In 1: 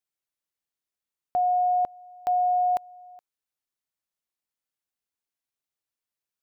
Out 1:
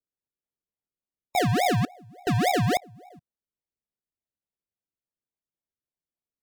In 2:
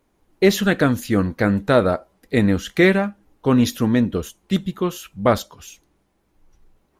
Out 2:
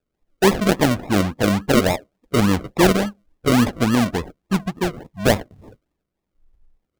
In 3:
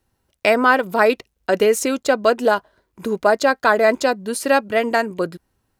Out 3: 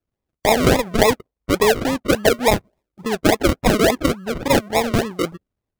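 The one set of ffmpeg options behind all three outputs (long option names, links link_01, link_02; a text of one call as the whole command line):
ffmpeg -i in.wav -af "acrusher=samples=41:mix=1:aa=0.000001:lfo=1:lforange=24.6:lforate=3.5,afftdn=noise_reduction=13:noise_floor=-41" out.wav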